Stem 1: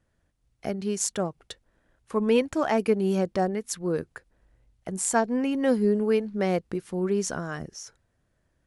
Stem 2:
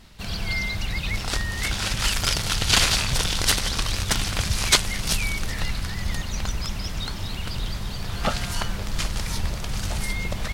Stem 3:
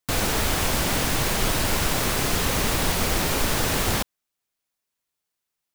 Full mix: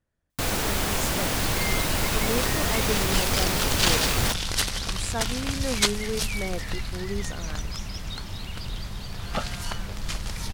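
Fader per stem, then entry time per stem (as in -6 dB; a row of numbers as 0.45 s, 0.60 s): -8.0 dB, -4.5 dB, -2.5 dB; 0.00 s, 1.10 s, 0.30 s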